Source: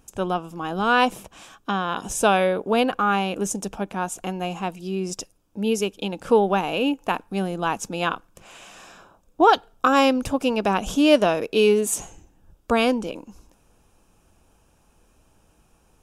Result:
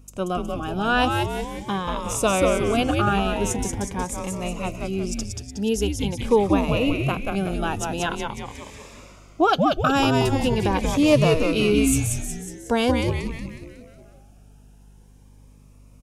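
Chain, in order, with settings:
echo with shifted repeats 183 ms, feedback 53%, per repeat −150 Hz, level −3.5 dB
mains hum 50 Hz, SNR 28 dB
phaser whose notches keep moving one way rising 0.44 Hz

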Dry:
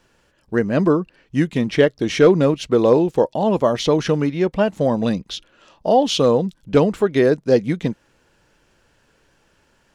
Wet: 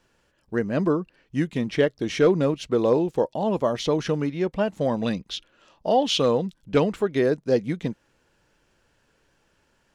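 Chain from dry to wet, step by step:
0:04.71–0:06.96: dynamic equaliser 2,400 Hz, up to +6 dB, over −36 dBFS, Q 0.75
level −6 dB

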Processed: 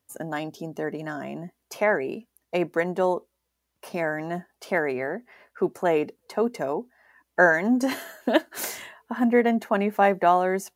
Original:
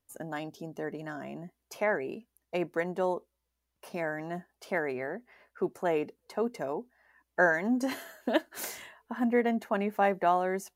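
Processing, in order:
high-pass filter 79 Hz
level +6.5 dB

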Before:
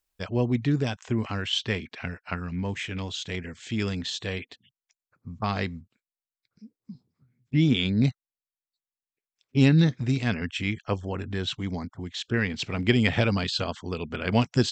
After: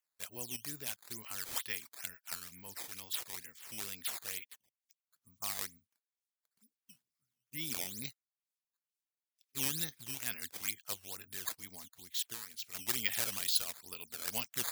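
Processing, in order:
dynamic equaliser 6,300 Hz, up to +4 dB, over −53 dBFS, Q 2.7
sample-and-hold swept by an LFO 9×, swing 160% 2.2 Hz
first-order pre-emphasis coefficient 0.97
0:12.27–0:12.75: downward compressor 10 to 1, threshold −38 dBFS, peak gain reduction 11.5 dB

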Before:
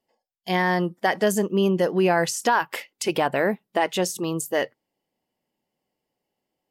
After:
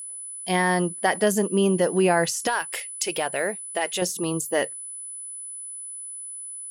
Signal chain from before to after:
0:02.47–0:04.02: graphic EQ with 10 bands 125 Hz −8 dB, 250 Hz −11 dB, 1,000 Hz −7 dB, 8,000 Hz +5 dB
steady tone 10,000 Hz −34 dBFS

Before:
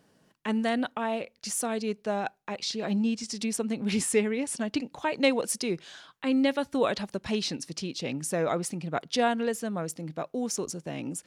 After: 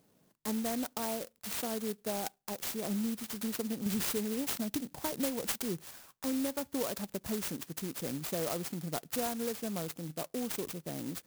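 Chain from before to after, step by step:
0:03.86–0:05.91: bass and treble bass +7 dB, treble +10 dB
downward compressor 4 to 1, threshold −27 dBFS, peak gain reduction 10 dB
converter with an unsteady clock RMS 0.14 ms
level −4 dB

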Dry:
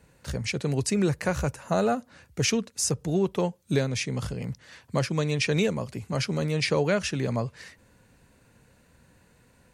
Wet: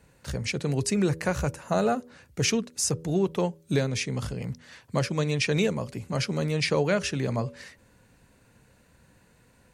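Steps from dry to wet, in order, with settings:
hum removal 81.18 Hz, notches 7

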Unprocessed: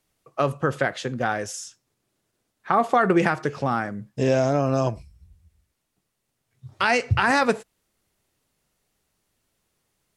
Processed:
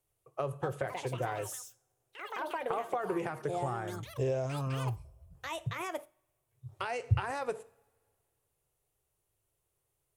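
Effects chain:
low-shelf EQ 150 Hz −11.5 dB
coupled-rooms reverb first 0.49 s, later 2.1 s, from −25 dB, DRR 17.5 dB
gain on a spectral selection 0:04.46–0:05.04, 320–860 Hz −12 dB
delay with pitch and tempo change per echo 338 ms, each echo +5 semitones, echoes 3, each echo −6 dB
downward compressor, threshold −22 dBFS, peak gain reduction 8 dB
drawn EQ curve 120 Hz 0 dB, 220 Hz −23 dB, 380 Hz −9 dB, 1,100 Hz −14 dB, 1,700 Hz −19 dB, 2,900 Hz −16 dB, 4,800 Hz −21 dB, 9,700 Hz −9 dB
level +4.5 dB

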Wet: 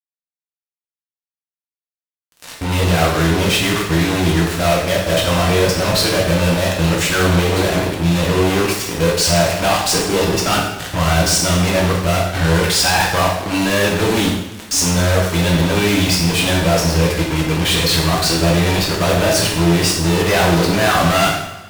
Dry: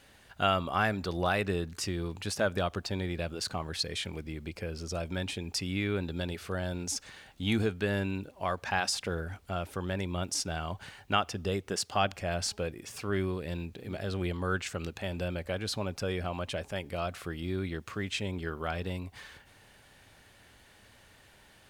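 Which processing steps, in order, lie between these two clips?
played backwards from end to start
fuzz pedal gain 48 dB, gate −41 dBFS
coupled-rooms reverb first 0.83 s, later 2.6 s, from −21 dB, DRR −3.5 dB
level −3.5 dB

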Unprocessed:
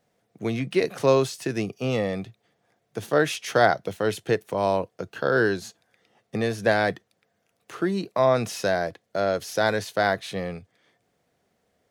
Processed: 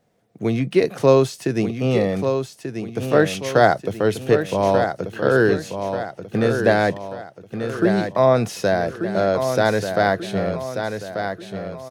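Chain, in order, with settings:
tilt shelving filter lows +3 dB, about 740 Hz
on a send: repeating echo 1,187 ms, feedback 44%, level −7.5 dB
on the sum: level +4 dB

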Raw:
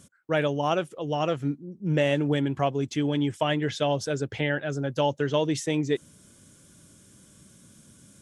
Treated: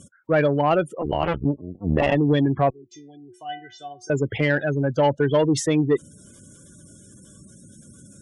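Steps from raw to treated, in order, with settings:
0:01.01–0:02.15: sub-harmonics by changed cycles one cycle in 2, muted
gate on every frequency bin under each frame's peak −20 dB strong
0:02.70–0:04.10: stiff-string resonator 360 Hz, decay 0.35 s, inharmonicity 0.008
harmonic generator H 5 −22 dB, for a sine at −11 dBFS
level +4.5 dB

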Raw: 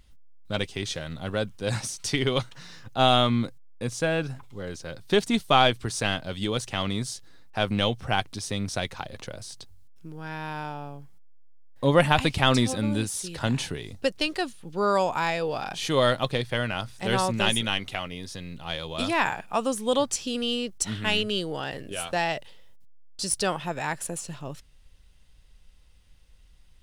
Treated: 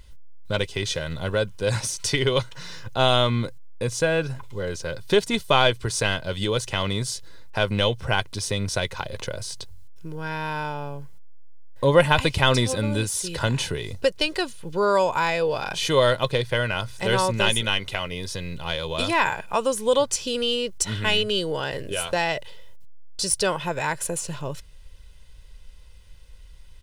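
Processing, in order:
comb filter 2 ms, depth 47%
in parallel at +1 dB: downward compressor, threshold −33 dBFS, peak gain reduction 20 dB

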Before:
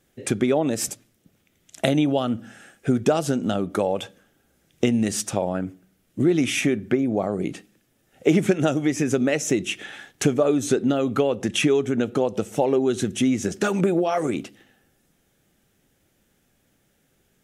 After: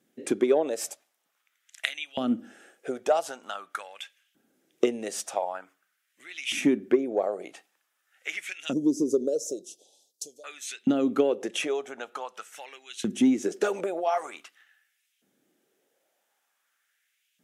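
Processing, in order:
0:08.73–0:10.44: elliptic band-stop filter 520–4,700 Hz, stop band 60 dB
auto-filter high-pass saw up 0.46 Hz 210–2,900 Hz
harmonic generator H 3 −21 dB, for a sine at −1 dBFS
level −4.5 dB

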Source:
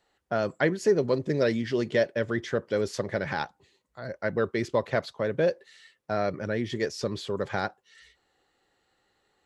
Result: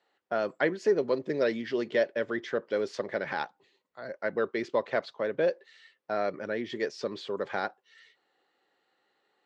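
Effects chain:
band-pass filter 270–4,400 Hz
level −1.5 dB

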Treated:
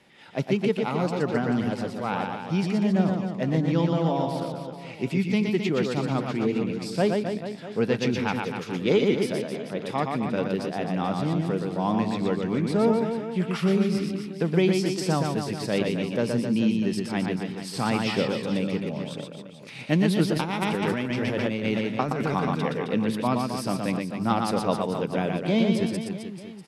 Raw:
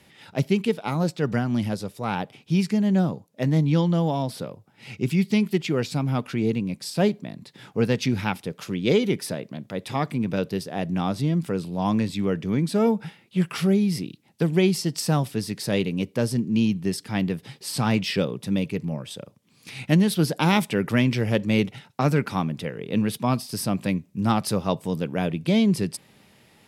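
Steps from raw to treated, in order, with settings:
low-pass filter 10,000 Hz 12 dB per octave
high-shelf EQ 3,500 Hz −7.5 dB
reverse bouncing-ball delay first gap 120 ms, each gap 1.2×, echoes 5
0:20.34–0:22.95: compressor whose output falls as the input rises −23 dBFS, ratio −1
parametric band 74 Hz −11 dB 2.1 octaves

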